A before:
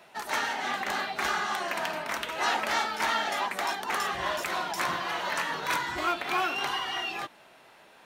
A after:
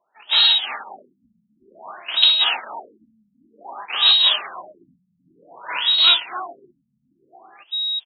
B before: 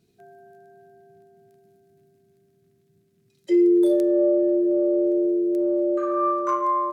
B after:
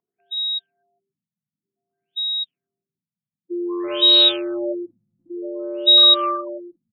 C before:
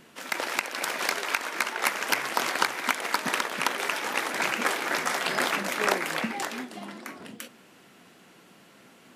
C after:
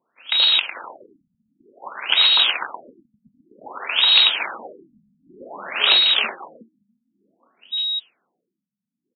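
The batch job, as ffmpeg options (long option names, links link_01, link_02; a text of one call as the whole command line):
ffmpeg -i in.wav -filter_complex "[0:a]aeval=exprs='val(0)+0.0126*sin(2*PI*3800*n/s)':channel_layout=same,asoftclip=type=hard:threshold=-15dB,highshelf=frequency=2500:width_type=q:width=3:gain=8.5,acontrast=47,agate=range=-14dB:threshold=-18dB:ratio=16:detection=peak,lowpass=frequency=7600:width_type=q:width=12,acrossover=split=2500[link_01][link_02];[link_02]acompressor=threshold=-18dB:ratio=4:attack=1:release=60[link_03];[link_01][link_03]amix=inputs=2:normalize=0,aderivative,aecho=1:1:371:0.668,apsyclip=10.5dB,afftfilt=real='re*lt(b*sr/1024,230*pow(4400/230,0.5+0.5*sin(2*PI*0.54*pts/sr)))':imag='im*lt(b*sr/1024,230*pow(4400/230,0.5+0.5*sin(2*PI*0.54*pts/sr)))':win_size=1024:overlap=0.75,volume=2.5dB" out.wav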